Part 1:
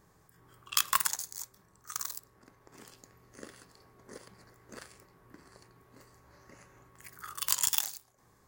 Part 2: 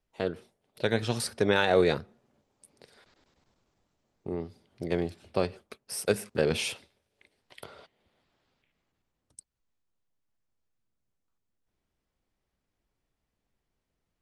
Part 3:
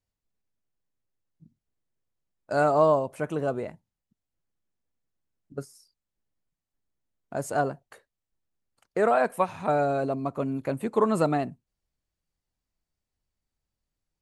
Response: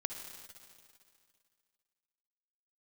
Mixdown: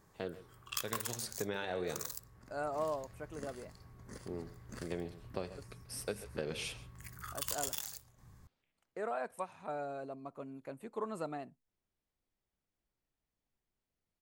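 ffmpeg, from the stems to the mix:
-filter_complex "[0:a]asubboost=boost=6.5:cutoff=160,asoftclip=type=tanh:threshold=-16dB,volume=-2dB[link_01];[1:a]flanger=delay=5.8:depth=6.3:regen=-84:speed=0.31:shape=sinusoidal,volume=-4dB,asplit=2[link_02][link_03];[link_03]volume=-19dB[link_04];[2:a]lowshelf=frequency=170:gain=-9.5,volume=-15dB[link_05];[link_01][link_02]amix=inputs=2:normalize=0,acompressor=threshold=-34dB:ratio=6,volume=0dB[link_06];[link_04]aecho=0:1:135:1[link_07];[link_05][link_06][link_07]amix=inputs=3:normalize=0"

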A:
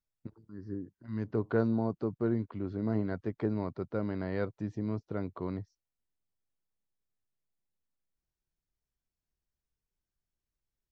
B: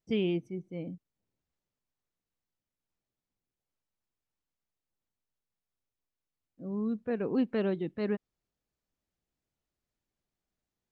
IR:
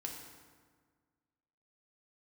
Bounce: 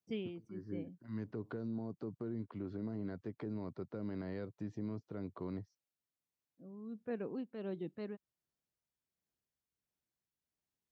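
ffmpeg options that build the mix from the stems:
-filter_complex "[0:a]acrossover=split=450|3000[link_01][link_02][link_03];[link_02]acompressor=threshold=-45dB:ratio=2.5[link_04];[link_01][link_04][link_03]amix=inputs=3:normalize=0,alimiter=level_in=4dB:limit=-24dB:level=0:latency=1:release=80,volume=-4dB,volume=-4dB[link_05];[1:a]adynamicequalizer=threshold=0.002:dfrequency=1900:dqfactor=1.3:tfrequency=1900:tqfactor=1.3:attack=5:release=100:ratio=0.375:range=2.5:mode=cutabove:tftype=bell,tremolo=f=1.4:d=0.66,volume=-7.5dB[link_06];[link_05][link_06]amix=inputs=2:normalize=0,highpass=100"

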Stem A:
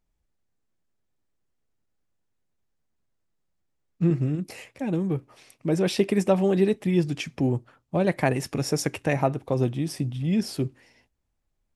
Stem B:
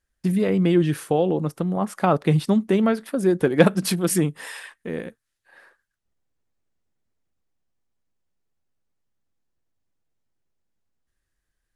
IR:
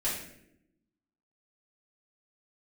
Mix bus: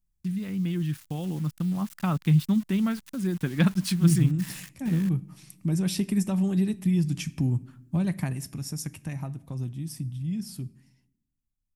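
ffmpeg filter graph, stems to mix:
-filter_complex "[0:a]equalizer=frequency=2600:width_type=o:width=1.8:gain=-5.5,acompressor=threshold=-28dB:ratio=1.5,volume=-0.5dB,afade=type=out:start_time=8.01:duration=0.46:silence=0.446684,asplit=2[link_01][link_02];[link_02]volume=-22.5dB[link_03];[1:a]lowpass=6300,aeval=exprs='val(0)*gte(abs(val(0)),0.0158)':channel_layout=same,volume=-6dB[link_04];[2:a]atrim=start_sample=2205[link_05];[link_03][link_05]afir=irnorm=-1:irlink=0[link_06];[link_01][link_04][link_06]amix=inputs=3:normalize=0,firequalizer=gain_entry='entry(160,0);entry(450,-21);entry(1000,-10);entry(2700,-5);entry(11000,3)':delay=0.05:min_phase=1,dynaudnorm=framelen=110:gausssize=21:maxgain=6dB"

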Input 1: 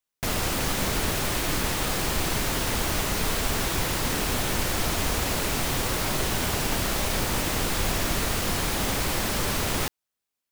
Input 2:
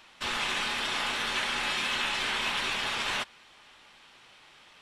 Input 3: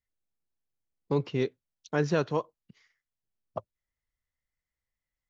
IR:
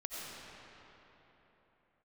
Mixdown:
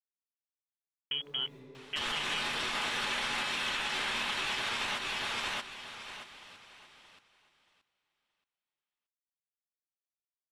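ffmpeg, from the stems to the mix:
-filter_complex "[1:a]adelay=1750,volume=1.5dB,asplit=2[link_01][link_02];[link_02]volume=-4.5dB[link_03];[2:a]dynaudnorm=framelen=200:gausssize=11:maxgain=4dB,aeval=exprs='val(0)*gte(abs(val(0)),0.0282)':channel_layout=same,volume=-4.5dB,asplit=2[link_04][link_05];[link_05]volume=-19dB[link_06];[link_04]lowpass=frequency=2900:width_type=q:width=0.5098,lowpass=frequency=2900:width_type=q:width=0.6013,lowpass=frequency=2900:width_type=q:width=0.9,lowpass=frequency=2900:width_type=q:width=2.563,afreqshift=-3400,acompressor=threshold=-29dB:ratio=6,volume=0dB[link_07];[3:a]atrim=start_sample=2205[link_08];[link_06][link_08]afir=irnorm=-1:irlink=0[link_09];[link_03]aecho=0:1:626|1252|1878|2504:1|0.24|0.0576|0.0138[link_10];[link_01][link_07][link_09][link_10]amix=inputs=4:normalize=0,alimiter=limit=-24dB:level=0:latency=1:release=184"

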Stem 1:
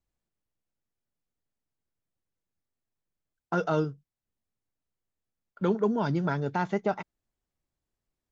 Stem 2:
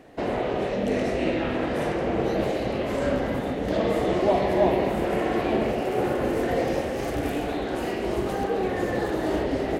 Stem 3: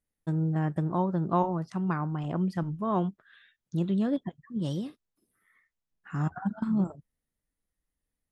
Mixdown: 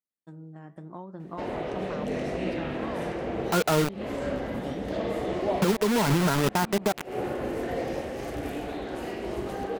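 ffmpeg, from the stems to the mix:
ffmpeg -i stem1.wav -i stem2.wav -i stem3.wav -filter_complex "[0:a]lowpass=2000,acrusher=bits=4:mix=0:aa=0.000001,volume=0.5dB,asplit=2[link_01][link_02];[1:a]adelay=1200,volume=-13dB[link_03];[2:a]flanger=delay=6.2:depth=9.2:regen=-71:speed=0.74:shape=triangular,highpass=190,acompressor=threshold=-33dB:ratio=6,volume=-8dB[link_04];[link_02]apad=whole_len=484830[link_05];[link_03][link_05]sidechaincompress=threshold=-45dB:ratio=8:attack=16:release=129[link_06];[link_01][link_06][link_04]amix=inputs=3:normalize=0,dynaudnorm=framelen=630:gausssize=3:maxgain=7dB,alimiter=limit=-14.5dB:level=0:latency=1:release=210" out.wav

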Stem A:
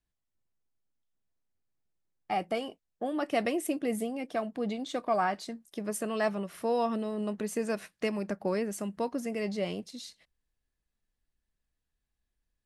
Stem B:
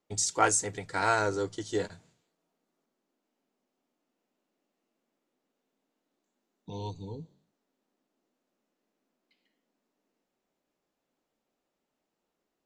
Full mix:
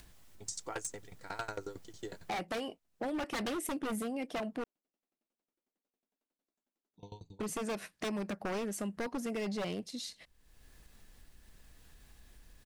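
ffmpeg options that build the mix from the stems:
ffmpeg -i stem1.wav -i stem2.wav -filter_complex "[0:a]acompressor=mode=upward:threshold=-38dB:ratio=2.5,volume=1.5dB,asplit=3[link_01][link_02][link_03];[link_01]atrim=end=4.64,asetpts=PTS-STARTPTS,afade=type=out:start_time=4.636:duration=0.004:curve=hsin[link_04];[link_02]atrim=start=4.64:end=7.4,asetpts=PTS-STARTPTS,volume=0[link_05];[link_03]atrim=start=7.4,asetpts=PTS-STARTPTS,afade=type=in:duration=0.004:curve=hsin[link_06];[link_04][link_05][link_06]concat=n=3:v=0:a=1[link_07];[1:a]aeval=exprs='val(0)*pow(10,-23*if(lt(mod(11*n/s,1),2*abs(11)/1000),1-mod(11*n/s,1)/(2*abs(11)/1000),(mod(11*n/s,1)-2*abs(11)/1000)/(1-2*abs(11)/1000))/20)':channel_layout=same,adelay=300,volume=-5dB[link_08];[link_07][link_08]amix=inputs=2:normalize=0,aeval=exprs='0.0447*(abs(mod(val(0)/0.0447+3,4)-2)-1)':channel_layout=same,acompressor=threshold=-36dB:ratio=2" out.wav

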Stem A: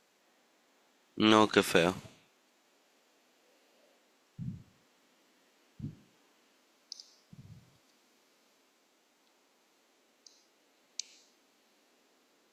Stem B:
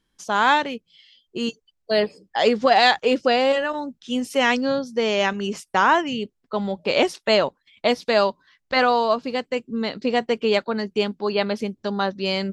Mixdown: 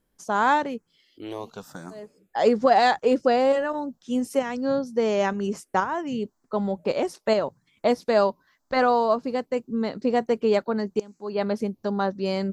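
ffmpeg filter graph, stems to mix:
ffmpeg -i stem1.wav -i stem2.wav -filter_complex "[0:a]highshelf=frequency=12000:gain=11.5,asplit=2[link_01][link_02];[link_02]afreqshift=0.87[link_03];[link_01][link_03]amix=inputs=2:normalize=1,volume=-6.5dB,asplit=2[link_04][link_05];[1:a]volume=0dB[link_06];[link_05]apad=whole_len=552333[link_07];[link_06][link_07]sidechaincompress=threshold=-58dB:ratio=6:attack=7.6:release=291[link_08];[link_04][link_08]amix=inputs=2:normalize=0,equalizer=frequency=3100:width=0.83:gain=-12.5" out.wav

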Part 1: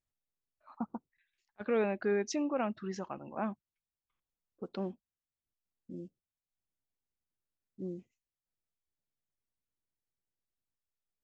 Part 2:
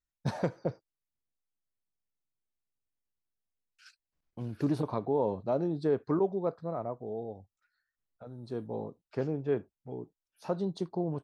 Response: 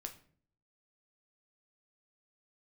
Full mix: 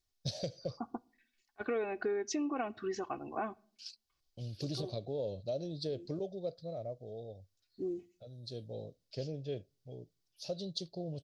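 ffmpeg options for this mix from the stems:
-filter_complex "[0:a]aecho=1:1:2.7:0.71,volume=0.5dB,asplit=2[link_01][link_02];[link_02]volume=-12dB[link_03];[1:a]firequalizer=gain_entry='entry(100,0);entry(220,-11);entry(400,-10);entry(580,0);entry(950,-28);entry(3100,7);entry(4800,15);entry(8700,-1)':delay=0.05:min_phase=1,volume=-1dB,asplit=3[link_04][link_05][link_06];[link_05]volume=-23dB[link_07];[link_06]apad=whole_len=495708[link_08];[link_01][link_08]sidechaincompress=threshold=-54dB:ratio=8:attack=16:release=121[link_09];[2:a]atrim=start_sample=2205[link_10];[link_03][link_07]amix=inputs=2:normalize=0[link_11];[link_11][link_10]afir=irnorm=-1:irlink=0[link_12];[link_09][link_04][link_12]amix=inputs=3:normalize=0,acompressor=threshold=-32dB:ratio=6"

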